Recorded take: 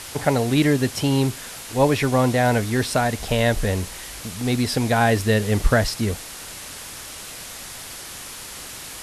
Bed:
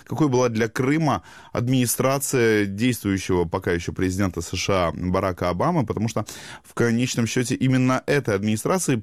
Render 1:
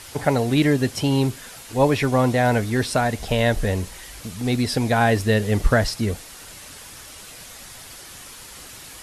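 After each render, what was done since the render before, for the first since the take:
broadband denoise 6 dB, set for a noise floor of −37 dBFS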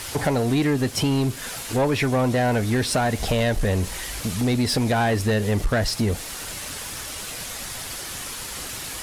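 downward compressor 2.5 to 1, threshold −26 dBFS, peak gain reduction 11 dB
leveller curve on the samples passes 2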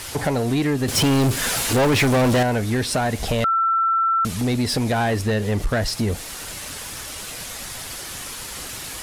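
0:00.88–0:02.43: leveller curve on the samples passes 3
0:03.44–0:04.25: beep over 1,340 Hz −16 dBFS
0:05.21–0:05.61: parametric band 12,000 Hz −4 dB 1.5 octaves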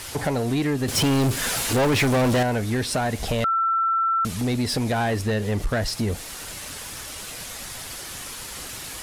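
level −2.5 dB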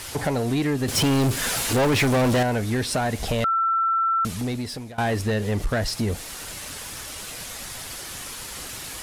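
0:04.23–0:04.98: fade out, to −21.5 dB

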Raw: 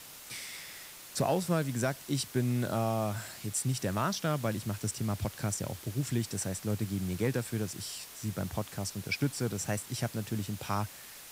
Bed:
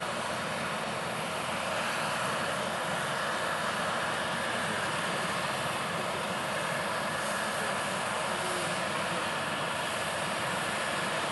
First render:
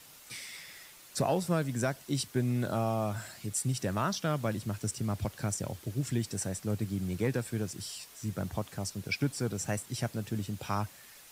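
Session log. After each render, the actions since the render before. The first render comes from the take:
broadband denoise 6 dB, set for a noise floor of −49 dBFS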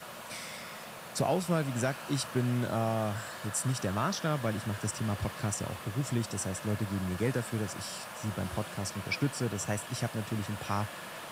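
mix in bed −12 dB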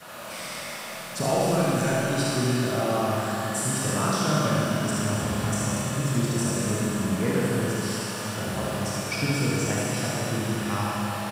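single-tap delay 73 ms −4.5 dB
four-comb reverb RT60 3.2 s, combs from 26 ms, DRR −5.5 dB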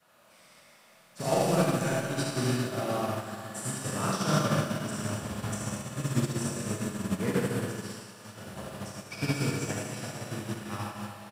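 expander for the loud parts 2.5 to 1, over −35 dBFS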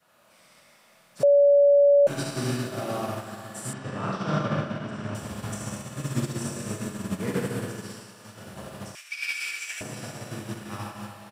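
0:01.23–0:02.07: beep over 570 Hz −13.5 dBFS
0:03.73–0:05.15: low-pass filter 3,000 Hz
0:08.95–0:09.81: high-pass with resonance 2,300 Hz, resonance Q 2.9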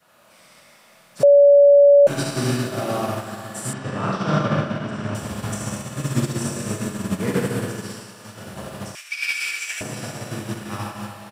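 level +6 dB

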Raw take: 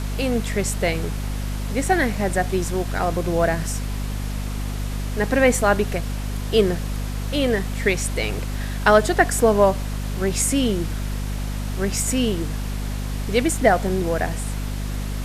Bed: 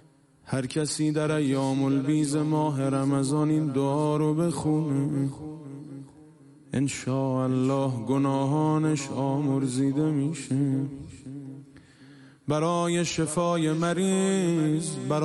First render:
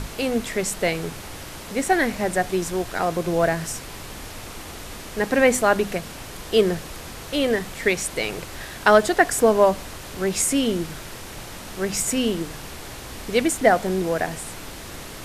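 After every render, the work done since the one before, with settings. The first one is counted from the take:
mains-hum notches 50/100/150/200/250 Hz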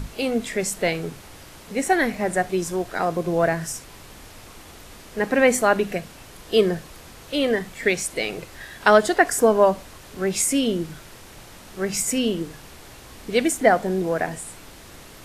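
noise reduction from a noise print 7 dB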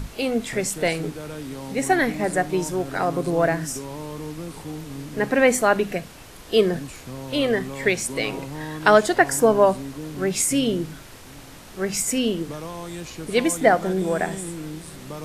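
mix in bed −9.5 dB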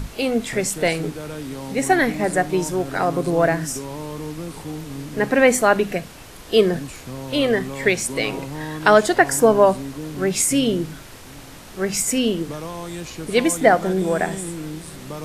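level +2.5 dB
brickwall limiter −2 dBFS, peak gain reduction 2 dB

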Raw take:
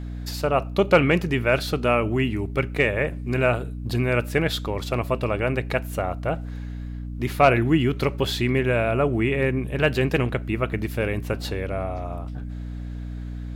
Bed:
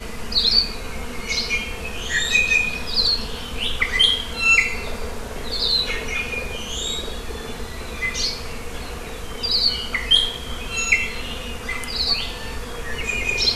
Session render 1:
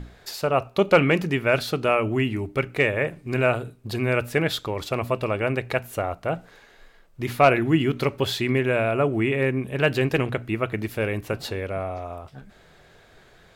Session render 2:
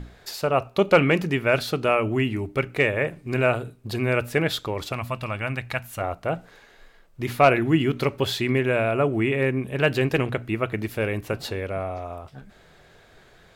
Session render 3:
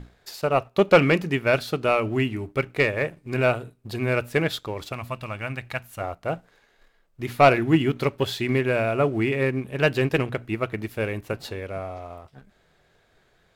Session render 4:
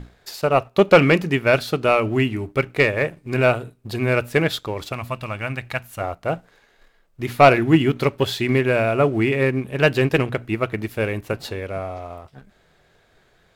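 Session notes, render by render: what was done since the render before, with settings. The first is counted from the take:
mains-hum notches 60/120/180/240/300 Hz
0:04.92–0:06.01: parametric band 420 Hz −14.5 dB 1 octave
leveller curve on the samples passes 1; expander for the loud parts 1.5 to 1, over −25 dBFS
level +4 dB; brickwall limiter −2 dBFS, peak gain reduction 1 dB

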